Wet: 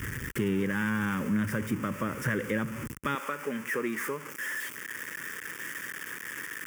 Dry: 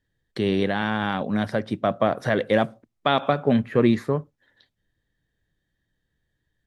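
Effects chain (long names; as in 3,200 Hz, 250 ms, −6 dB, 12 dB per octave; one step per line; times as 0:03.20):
converter with a step at zero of −26.5 dBFS
high-pass filter 56 Hz 12 dB per octave, from 0:03.15 460 Hz
downward compressor 2 to 1, threshold −26 dBFS, peak gain reduction 7 dB
phaser with its sweep stopped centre 1,700 Hz, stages 4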